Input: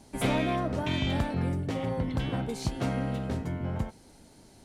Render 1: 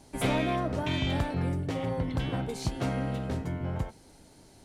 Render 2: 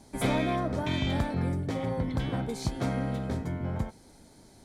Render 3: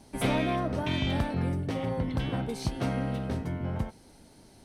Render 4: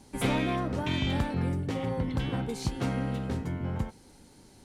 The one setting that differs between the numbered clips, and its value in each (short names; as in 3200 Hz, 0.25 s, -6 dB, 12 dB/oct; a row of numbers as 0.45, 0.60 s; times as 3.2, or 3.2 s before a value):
notch, frequency: 220, 2800, 7100, 650 Hz